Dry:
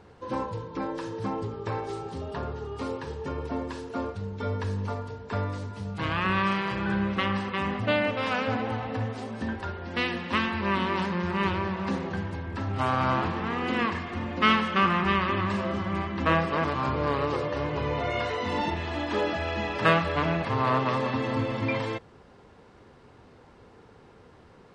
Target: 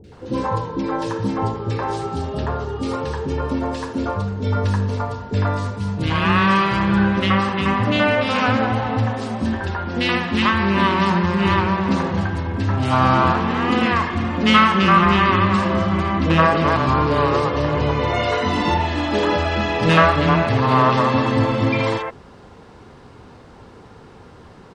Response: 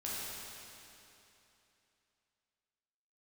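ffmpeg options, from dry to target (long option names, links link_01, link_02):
-filter_complex "[0:a]acontrast=81,acrossover=split=480|2100[link_01][link_02][link_03];[link_03]adelay=40[link_04];[link_02]adelay=120[link_05];[link_01][link_05][link_04]amix=inputs=3:normalize=0,volume=4dB"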